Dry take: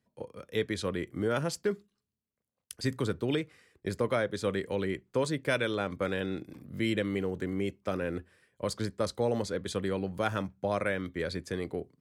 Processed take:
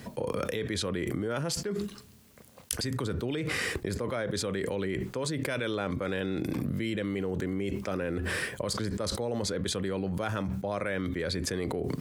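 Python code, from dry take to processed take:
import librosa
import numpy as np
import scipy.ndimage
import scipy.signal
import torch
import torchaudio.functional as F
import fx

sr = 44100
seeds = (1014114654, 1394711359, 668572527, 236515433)

y = fx.env_flatten(x, sr, amount_pct=100)
y = y * 10.0 ** (-6.5 / 20.0)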